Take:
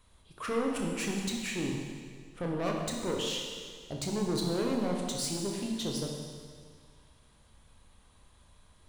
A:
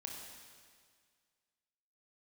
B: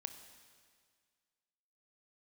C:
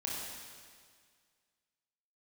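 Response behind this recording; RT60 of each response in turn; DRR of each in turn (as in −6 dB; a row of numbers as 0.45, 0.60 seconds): A; 1.9, 1.9, 1.9 seconds; −0.5, 8.0, −5.0 decibels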